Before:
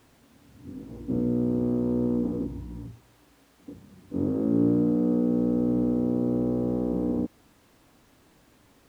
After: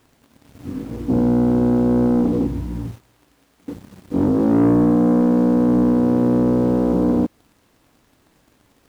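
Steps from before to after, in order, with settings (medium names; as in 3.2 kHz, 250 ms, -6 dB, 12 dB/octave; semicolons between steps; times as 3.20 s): waveshaping leveller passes 2; trim +4 dB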